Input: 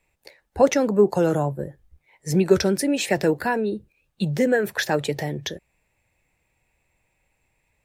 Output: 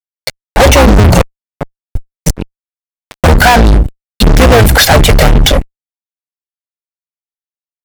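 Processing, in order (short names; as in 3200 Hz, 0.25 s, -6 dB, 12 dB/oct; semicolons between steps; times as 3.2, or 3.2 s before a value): octaver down 2 oct, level +1 dB; notches 60/120/180/240 Hz; comb 1.4 ms, depth 90%; dynamic EQ 6400 Hz, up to -4 dB, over -39 dBFS, Q 1.6; 1.21–3.24 flipped gate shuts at -15 dBFS, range -32 dB; envelope flanger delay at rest 8.9 ms, full sweep at -12.5 dBFS; fuzz box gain 37 dB, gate -42 dBFS; maximiser +20 dB; gain -1 dB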